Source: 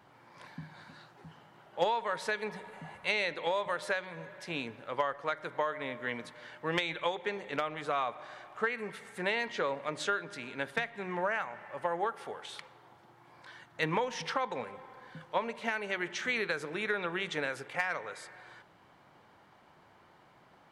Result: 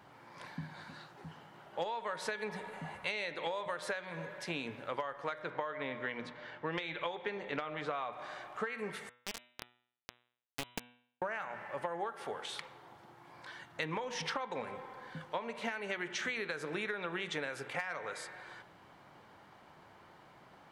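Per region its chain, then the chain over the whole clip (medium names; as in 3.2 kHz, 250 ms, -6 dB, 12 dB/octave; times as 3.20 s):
5.42–8.13 s: low-pass 4.6 kHz + tape noise reduction on one side only decoder only
9.09–11.22 s: cascade formant filter i + companded quantiser 2-bit + loudspeaker Doppler distortion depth 0.29 ms
whole clip: de-hum 122 Hz, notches 32; compression 12:1, threshold -36 dBFS; trim +2.5 dB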